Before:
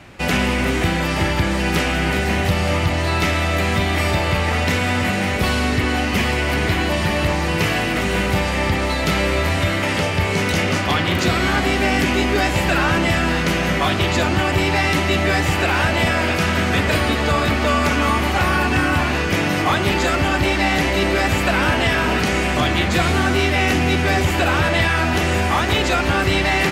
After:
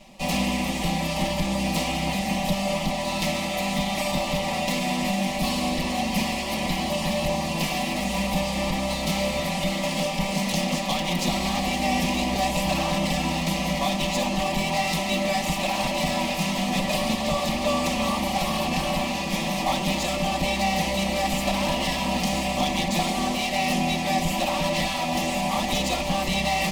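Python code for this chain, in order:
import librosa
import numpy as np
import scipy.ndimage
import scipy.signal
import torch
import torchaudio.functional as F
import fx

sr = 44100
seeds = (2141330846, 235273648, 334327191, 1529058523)

y = fx.lower_of_two(x, sr, delay_ms=5.2)
y = fx.fixed_phaser(y, sr, hz=400.0, stages=6)
y = F.gain(torch.from_numpy(y), -1.5).numpy()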